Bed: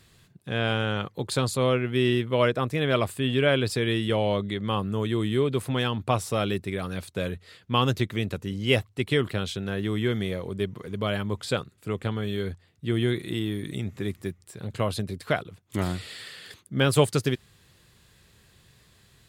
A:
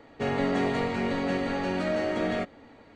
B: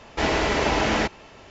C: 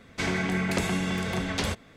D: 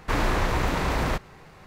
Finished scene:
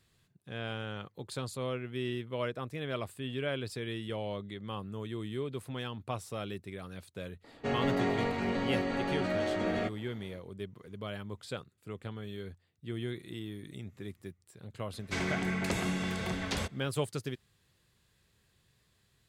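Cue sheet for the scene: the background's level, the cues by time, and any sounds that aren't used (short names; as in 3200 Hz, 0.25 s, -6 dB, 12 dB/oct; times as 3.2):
bed -12.5 dB
7.44 add A -4 dB
14.93 add C -5.5 dB
not used: B, D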